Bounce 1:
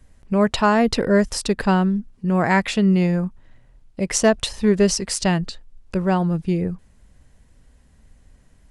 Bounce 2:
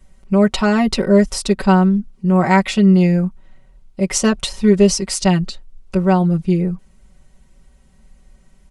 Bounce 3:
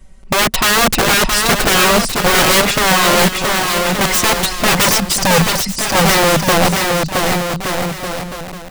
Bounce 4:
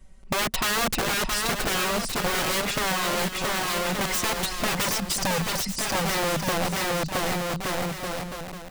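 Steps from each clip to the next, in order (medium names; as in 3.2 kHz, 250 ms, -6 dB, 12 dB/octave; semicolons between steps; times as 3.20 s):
band-stop 1.7 kHz, Q 11; comb 5.3 ms, depth 91%
spectral selection erased 4.86–5.46 s, 280–4500 Hz; integer overflow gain 14 dB; on a send: bouncing-ball echo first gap 670 ms, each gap 0.75×, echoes 5; on the sum: trim +6 dB
compression, threshold -14 dBFS, peak gain reduction 6.5 dB; trim -8.5 dB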